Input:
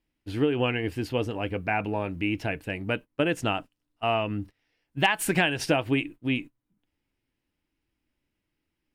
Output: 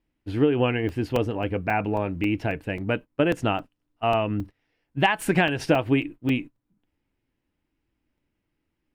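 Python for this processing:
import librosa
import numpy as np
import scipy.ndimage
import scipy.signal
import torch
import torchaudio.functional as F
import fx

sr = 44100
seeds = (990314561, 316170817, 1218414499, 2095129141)

y = fx.high_shelf(x, sr, hz=2800.0, db=-10.0)
y = fx.buffer_crackle(y, sr, first_s=0.89, period_s=0.27, block=128, kind='zero')
y = y * librosa.db_to_amplitude(4.0)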